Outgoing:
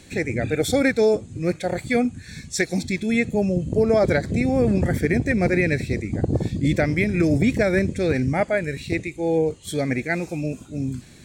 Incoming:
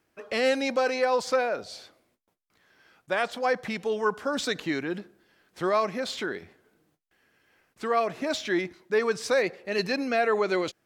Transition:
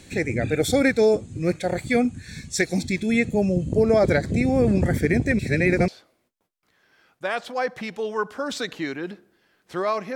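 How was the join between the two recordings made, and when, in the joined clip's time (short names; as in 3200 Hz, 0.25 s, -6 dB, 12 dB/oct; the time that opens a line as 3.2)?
outgoing
5.39–5.88 reverse
5.88 switch to incoming from 1.75 s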